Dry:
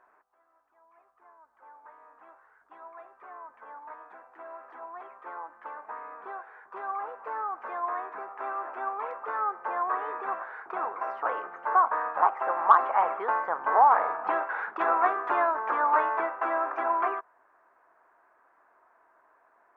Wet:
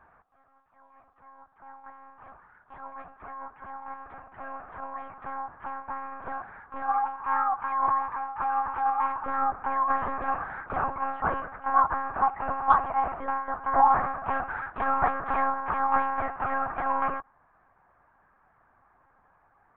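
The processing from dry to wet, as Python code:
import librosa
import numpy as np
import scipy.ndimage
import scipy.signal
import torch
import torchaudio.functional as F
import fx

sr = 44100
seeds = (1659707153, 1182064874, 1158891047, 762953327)

y = fx.low_shelf_res(x, sr, hz=620.0, db=-12.5, q=3.0, at=(6.89, 9.24))
y = fx.rider(y, sr, range_db=5, speed_s=2.0)
y = fx.air_absorb(y, sr, metres=70.0)
y = fx.lpc_monotone(y, sr, seeds[0], pitch_hz=270.0, order=10)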